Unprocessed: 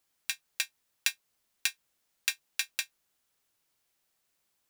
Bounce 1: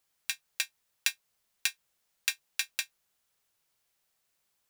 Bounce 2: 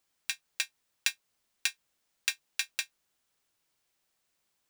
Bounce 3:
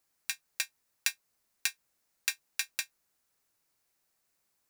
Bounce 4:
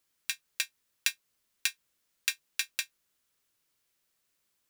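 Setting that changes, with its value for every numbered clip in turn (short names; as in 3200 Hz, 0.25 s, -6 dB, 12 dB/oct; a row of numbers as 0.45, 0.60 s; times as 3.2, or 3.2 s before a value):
bell, frequency: 290, 13000, 3200, 770 Hz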